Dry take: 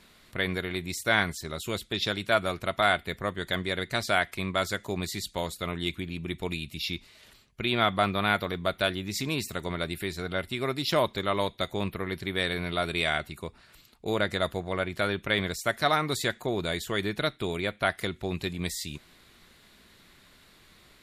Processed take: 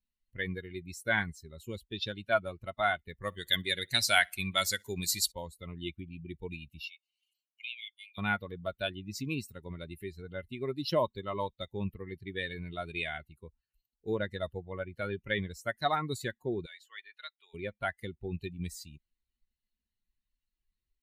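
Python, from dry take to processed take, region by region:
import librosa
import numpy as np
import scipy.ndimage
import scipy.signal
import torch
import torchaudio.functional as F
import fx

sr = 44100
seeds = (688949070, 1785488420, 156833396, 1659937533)

y = fx.chain(x, sr, fx.high_shelf(hz=2400.0, db=12.0),
    fx.echo_feedback(ms=62, feedback_pct=52, wet_db=-16.5), at=(3.21, 5.32))
y = fx.chain(y, sr, fx.cheby_ripple_highpass(hz=2100.0, ripple_db=3),
    fx.band_squash(depth_pct=40), at=(6.8, 8.18))
y = fx.chain(y, sr, fx.highpass(hz=1200.0, slope=12),
    fx.high_shelf(hz=7000.0, db=-8.5), at=(16.66, 17.54))
y = fx.bin_expand(y, sr, power=2.0)
y = fx.notch(y, sr, hz=1200.0, q=9.6)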